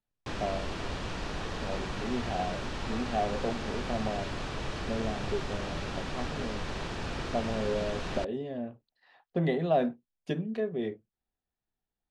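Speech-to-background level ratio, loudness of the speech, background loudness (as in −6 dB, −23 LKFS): 2.5 dB, −34.5 LKFS, −37.0 LKFS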